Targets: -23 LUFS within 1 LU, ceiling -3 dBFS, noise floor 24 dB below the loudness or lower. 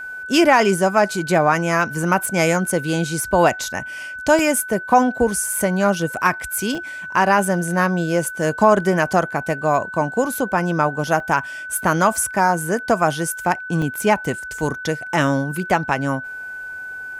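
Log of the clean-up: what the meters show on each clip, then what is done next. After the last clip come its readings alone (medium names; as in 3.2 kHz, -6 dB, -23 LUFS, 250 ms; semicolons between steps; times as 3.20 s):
dropouts 4; longest dropout 1.1 ms; steady tone 1.5 kHz; tone level -29 dBFS; loudness -19.0 LUFS; peak level -2.0 dBFS; loudness target -23.0 LUFS
-> interpolate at 4.39/6.75/11.20/13.82 s, 1.1 ms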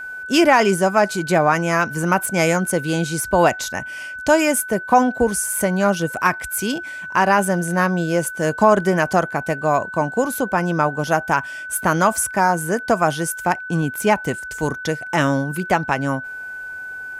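dropouts 0; steady tone 1.5 kHz; tone level -29 dBFS
-> band-stop 1.5 kHz, Q 30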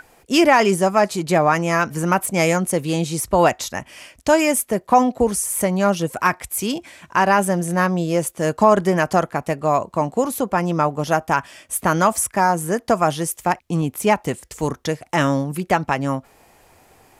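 steady tone not found; loudness -19.5 LUFS; peak level -2.5 dBFS; loudness target -23.0 LUFS
-> trim -3.5 dB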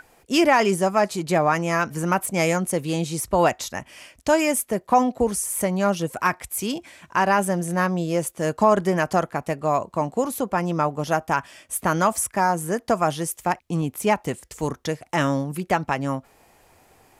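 loudness -23.0 LUFS; peak level -6.0 dBFS; noise floor -58 dBFS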